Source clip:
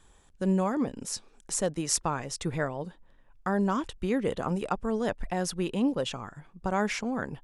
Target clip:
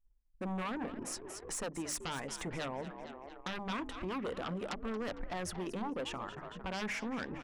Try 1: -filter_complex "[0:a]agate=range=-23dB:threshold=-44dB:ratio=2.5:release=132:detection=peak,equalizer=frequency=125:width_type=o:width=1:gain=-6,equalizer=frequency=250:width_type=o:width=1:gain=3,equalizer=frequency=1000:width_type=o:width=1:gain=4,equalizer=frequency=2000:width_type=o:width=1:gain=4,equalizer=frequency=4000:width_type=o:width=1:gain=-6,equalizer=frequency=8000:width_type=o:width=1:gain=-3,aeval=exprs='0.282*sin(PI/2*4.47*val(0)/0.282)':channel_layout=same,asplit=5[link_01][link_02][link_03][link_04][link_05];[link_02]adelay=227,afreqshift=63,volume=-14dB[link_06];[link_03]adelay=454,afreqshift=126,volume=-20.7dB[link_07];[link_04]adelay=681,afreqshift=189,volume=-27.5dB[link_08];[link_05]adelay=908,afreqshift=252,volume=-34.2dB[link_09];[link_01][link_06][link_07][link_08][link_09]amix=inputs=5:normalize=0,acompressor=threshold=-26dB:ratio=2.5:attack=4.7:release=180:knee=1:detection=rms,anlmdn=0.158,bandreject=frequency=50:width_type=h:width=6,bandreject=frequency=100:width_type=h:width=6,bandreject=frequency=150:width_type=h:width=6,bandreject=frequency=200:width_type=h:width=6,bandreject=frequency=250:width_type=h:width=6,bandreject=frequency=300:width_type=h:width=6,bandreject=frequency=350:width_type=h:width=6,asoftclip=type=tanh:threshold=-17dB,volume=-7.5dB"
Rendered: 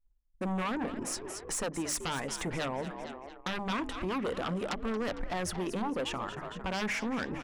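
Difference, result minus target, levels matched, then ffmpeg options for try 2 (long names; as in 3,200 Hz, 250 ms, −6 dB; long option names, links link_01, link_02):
downward compressor: peak gain reduction −5.5 dB
-filter_complex "[0:a]agate=range=-23dB:threshold=-44dB:ratio=2.5:release=132:detection=peak,equalizer=frequency=125:width_type=o:width=1:gain=-6,equalizer=frequency=250:width_type=o:width=1:gain=3,equalizer=frequency=1000:width_type=o:width=1:gain=4,equalizer=frequency=2000:width_type=o:width=1:gain=4,equalizer=frequency=4000:width_type=o:width=1:gain=-6,equalizer=frequency=8000:width_type=o:width=1:gain=-3,aeval=exprs='0.282*sin(PI/2*4.47*val(0)/0.282)':channel_layout=same,asplit=5[link_01][link_02][link_03][link_04][link_05];[link_02]adelay=227,afreqshift=63,volume=-14dB[link_06];[link_03]adelay=454,afreqshift=126,volume=-20.7dB[link_07];[link_04]adelay=681,afreqshift=189,volume=-27.5dB[link_08];[link_05]adelay=908,afreqshift=252,volume=-34.2dB[link_09];[link_01][link_06][link_07][link_08][link_09]amix=inputs=5:normalize=0,acompressor=threshold=-35.5dB:ratio=2.5:attack=4.7:release=180:knee=1:detection=rms,anlmdn=0.158,bandreject=frequency=50:width_type=h:width=6,bandreject=frequency=100:width_type=h:width=6,bandreject=frequency=150:width_type=h:width=6,bandreject=frequency=200:width_type=h:width=6,bandreject=frequency=250:width_type=h:width=6,bandreject=frequency=300:width_type=h:width=6,bandreject=frequency=350:width_type=h:width=6,asoftclip=type=tanh:threshold=-17dB,volume=-7.5dB"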